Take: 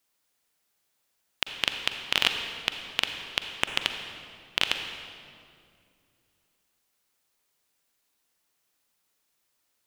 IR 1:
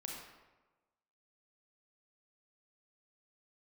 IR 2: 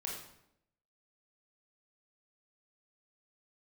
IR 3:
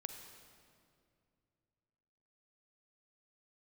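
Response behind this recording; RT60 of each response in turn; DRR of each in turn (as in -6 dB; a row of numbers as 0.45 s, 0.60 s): 3; 1.2 s, 0.80 s, 2.4 s; -1.5 dB, -2.5 dB, 5.5 dB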